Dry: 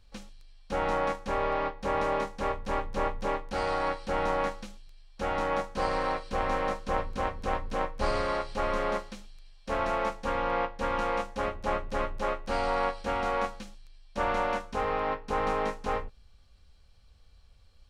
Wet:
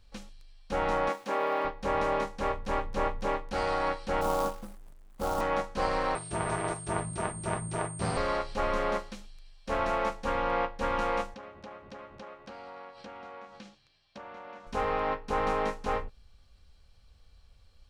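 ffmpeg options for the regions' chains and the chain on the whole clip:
ffmpeg -i in.wav -filter_complex "[0:a]asettb=1/sr,asplit=3[link_01][link_02][link_03];[link_01]atrim=end=1.094[link_04];[link_02]atrim=start=1.09:end=1.65,asetpts=PTS-STARTPTS,afade=type=in:duration=0.004:curve=qsin,afade=type=out:start_time=0.556:duration=0.004:curve=qsin,highpass=frequency=210:width=0.5412,highpass=frequency=210:width=1.3066,aeval=exprs='val(0)*gte(abs(val(0)),0.00266)':channel_layout=same[link_05];[link_03]atrim=start=1.646[link_06];[link_04][link_05]acrossfade=duration=0.004:curve1=hsin:curve2=qsin[link_07];[link_07][link_06]acrossfade=duration=0.004:curve1=qsin:curve2=hsin,asettb=1/sr,asplit=3[link_08][link_09][link_10];[link_08]atrim=end=4.214[link_11];[link_09]atrim=start=4.21:end=5.41,asetpts=PTS-STARTPTS,afade=type=in:duration=0.004:curve=qsin,afade=type=out:start_time=1.196:duration=0.004:curve=qsin,asuperstop=centerf=3600:order=12:qfactor=0.51,acrusher=bits=3:mode=log:mix=0:aa=0.000001[link_12];[link_10]atrim=start=5.406[link_13];[link_11][link_12]acrossfade=duration=0.004:curve1=hsin:curve2=qsin[link_14];[link_14][link_13]acrossfade=duration=0.004:curve1=qsin:curve2=hsin,asettb=1/sr,asplit=3[link_15][link_16][link_17];[link_15]atrim=end=6.154[link_18];[link_16]atrim=start=6.15:end=8.17,asetpts=PTS-STARTPTS,afade=type=in:duration=0.004:curve=qsin,afade=type=out:start_time=2.016:duration=0.004:curve=qsin,aeval=exprs='val(0)*sin(2*PI*140*n/s)':channel_layout=same,aeval=exprs='val(0)+0.00794*sin(2*PI*8600*n/s)':channel_layout=same[link_19];[link_17]atrim=start=8.166[link_20];[link_18][link_19]acrossfade=duration=0.004:curve1=hsin:curve2=qsin[link_21];[link_21][link_20]acrossfade=duration=0.004:curve1=qsin:curve2=hsin,asettb=1/sr,asplit=3[link_22][link_23][link_24];[link_22]atrim=end=11.344[link_25];[link_23]atrim=start=11.34:end=14.67,asetpts=PTS-STARTPTS,afade=type=in:duration=0.004:curve=qsin,afade=type=out:start_time=3.326:duration=0.004:curve=qsin,highpass=120,lowpass=5200,acompressor=threshold=-41dB:ratio=12:attack=3.2:release=140:knee=1:detection=peak[link_26];[link_24]atrim=start=14.666[link_27];[link_25][link_26]acrossfade=duration=0.004:curve1=hsin:curve2=qsin[link_28];[link_28][link_27]acrossfade=duration=0.004:curve1=qsin:curve2=hsin" out.wav

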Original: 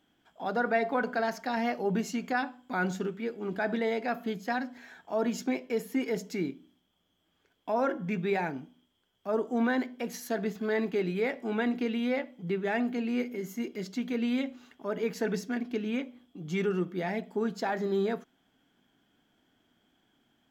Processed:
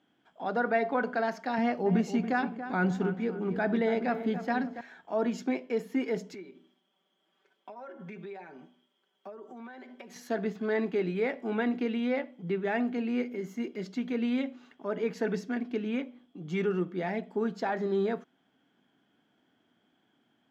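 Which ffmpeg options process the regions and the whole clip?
ffmpeg -i in.wav -filter_complex "[0:a]asettb=1/sr,asplit=3[link_01][link_02][link_03];[link_01]atrim=end=1.584[link_04];[link_02]atrim=start=1.58:end=4.81,asetpts=PTS-STARTPTS,afade=type=in:duration=0.004:curve=qsin,afade=type=out:start_time=3.226:duration=0.004:curve=qsin,equalizer=frequency=83:width_type=o:width=1.8:gain=14,asplit=2[link_05][link_06];[link_06]adelay=281,lowpass=frequency=2000:poles=1,volume=-10dB,asplit=2[link_07][link_08];[link_08]adelay=281,lowpass=frequency=2000:poles=1,volume=0.41,asplit=2[link_09][link_10];[link_10]adelay=281,lowpass=frequency=2000:poles=1,volume=0.41,asplit=2[link_11][link_12];[link_12]adelay=281,lowpass=frequency=2000:poles=1,volume=0.41[link_13];[link_05][link_07][link_09][link_11][link_13]amix=inputs=5:normalize=0,atrim=end_sample=142443[link_14];[link_03]atrim=start=4.806[link_15];[link_04][link_14]acrossfade=duration=0.004:curve1=hsin:curve2=qsin[link_16];[link_16][link_15]acrossfade=duration=0.004:curve1=qsin:curve2=hsin,asettb=1/sr,asplit=3[link_17][link_18][link_19];[link_17]atrim=end=6.344[link_20];[link_18]atrim=start=6.34:end=10.16,asetpts=PTS-STARTPTS,afade=type=in:duration=0.004:curve=qsin,afade=type=out:start_time=3.816:duration=0.004:curve=qsin,highpass=300,acompressor=threshold=-43dB:ratio=16:attack=3.2:release=140:knee=1:detection=peak,aecho=1:1:5.2:0.79,atrim=end_sample=168462[link_21];[link_19]atrim=start=10.156[link_22];[link_20][link_21]acrossfade=duration=0.004:curve1=hsin:curve2=qsin[link_23];[link_23][link_22]acrossfade=duration=0.004:curve1=qsin:curve2=hsin,highpass=130,aemphasis=mode=reproduction:type=50fm" out.wav

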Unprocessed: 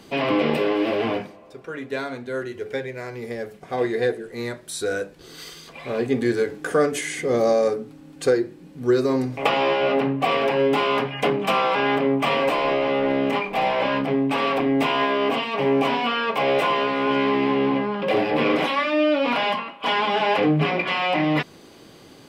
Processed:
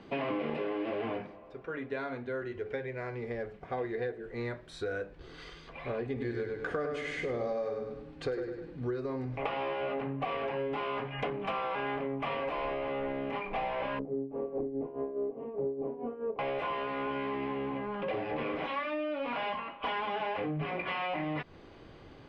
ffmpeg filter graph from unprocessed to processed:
ffmpeg -i in.wav -filter_complex "[0:a]asettb=1/sr,asplit=3[link_01][link_02][link_03];[link_01]atrim=end=6.064[link_04];[link_02]atrim=start=6.06:end=8.91,asetpts=PTS-STARTPTS,afade=type=in:duration=0.004:curve=qsin,afade=type=out:start_time=2.846:duration=0.004:curve=qsin,equalizer=frequency=4200:width_type=o:width=0.69:gain=4,aecho=1:1:101|202|303|404:0.501|0.18|0.065|0.0234,atrim=end_sample=125685[link_05];[link_03]atrim=start=8.906[link_06];[link_04][link_05]acrossfade=duration=0.004:curve1=hsin:curve2=qsin[link_07];[link_07][link_06]acrossfade=duration=0.004:curve1=qsin:curve2=hsin,asettb=1/sr,asplit=3[link_08][link_09][link_10];[link_08]atrim=end=13.994[link_11];[link_09]atrim=start=13.99:end=16.39,asetpts=PTS-STARTPTS,afade=type=in:duration=0.004:curve=qsin,afade=type=out:start_time=2.396:duration=0.004:curve=qsin,lowpass=frequency=420:width_type=q:width=2.8,tremolo=f=4.8:d=0.74[link_12];[link_10]atrim=start=16.386[link_13];[link_11][link_12]acrossfade=duration=0.004:curve1=hsin:curve2=qsin[link_14];[link_14][link_13]acrossfade=duration=0.004:curve1=qsin:curve2=hsin,lowpass=2500,acompressor=threshold=-27dB:ratio=5,asubboost=boost=5:cutoff=82,volume=-4dB" out.wav

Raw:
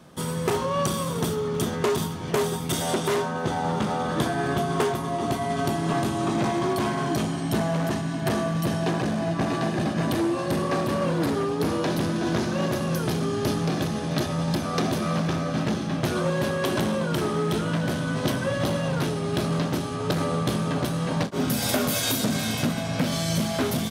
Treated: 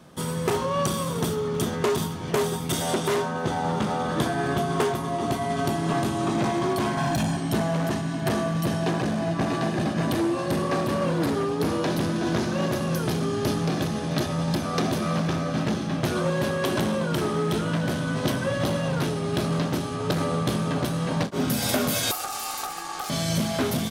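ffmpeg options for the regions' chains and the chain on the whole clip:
ffmpeg -i in.wav -filter_complex "[0:a]asettb=1/sr,asplit=3[link_01][link_02][link_03];[link_01]atrim=end=6.974[link_04];[link_02]atrim=start=6.97:end=7.37,asetpts=PTS-STARTPTS,afade=type=in:duration=0.004:curve=qsin,afade=type=out:start_time=0.396:duration=0.004:curve=qsin,aecho=1:1:1.2:0.94,atrim=end_sample=17640,volume=20.5dB,asoftclip=hard,volume=-20.5dB[link_05];[link_03]atrim=start=7.366[link_06];[link_04][link_05]acrossfade=duration=0.004:curve1=hsin:curve2=qsin[link_07];[link_07][link_06]acrossfade=duration=0.004:curve1=qsin:curve2=hsin,asettb=1/sr,asplit=3[link_08][link_09][link_10];[link_08]atrim=end=22.114[link_11];[link_09]atrim=start=22.11:end=23.1,asetpts=PTS-STARTPTS,afade=type=in:duration=0.004:curve=qsin,afade=type=out:start_time=0.986:duration=0.004:curve=qsin,highshelf=frequency=4600:gain=7.5,acrossover=split=470|4100[link_12][link_13][link_14];[link_12]acompressor=threshold=-29dB:ratio=4[link_15];[link_13]acompressor=threshold=-39dB:ratio=4[link_16];[link_14]acompressor=threshold=-28dB:ratio=4[link_17];[link_15][link_16][link_17]amix=inputs=3:normalize=0,aeval=exprs='val(0)*sin(2*PI*1000*n/s)':channel_layout=same[link_18];[link_10]atrim=start=23.096[link_19];[link_11][link_18]acrossfade=duration=0.004:curve1=hsin:curve2=qsin[link_20];[link_20][link_19]acrossfade=duration=0.004:curve1=qsin:curve2=hsin" out.wav

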